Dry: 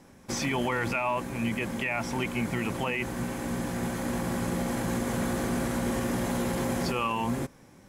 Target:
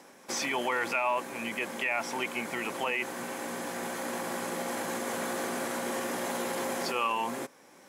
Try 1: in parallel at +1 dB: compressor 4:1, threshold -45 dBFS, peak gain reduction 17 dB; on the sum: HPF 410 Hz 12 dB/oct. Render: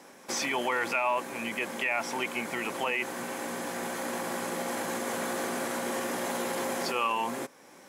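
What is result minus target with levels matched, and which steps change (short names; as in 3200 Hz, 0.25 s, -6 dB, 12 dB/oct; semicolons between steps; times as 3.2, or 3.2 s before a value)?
compressor: peak gain reduction -8.5 dB
change: compressor 4:1, threshold -56.5 dBFS, peak gain reduction 25.5 dB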